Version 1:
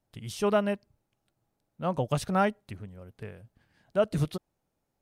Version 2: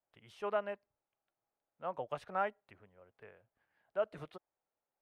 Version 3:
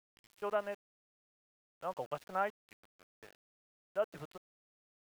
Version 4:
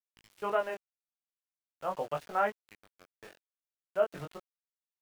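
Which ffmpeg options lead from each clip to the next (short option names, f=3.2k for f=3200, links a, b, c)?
-filter_complex "[0:a]acrossover=split=440 2700:gain=0.126 1 0.1[a][b][c];[a][b][c]amix=inputs=3:normalize=0,volume=-7dB"
-af "aeval=exprs='val(0)*gte(abs(val(0)),0.00266)':c=same"
-af "flanger=delay=18.5:depth=6:speed=0.42,volume=8.5dB"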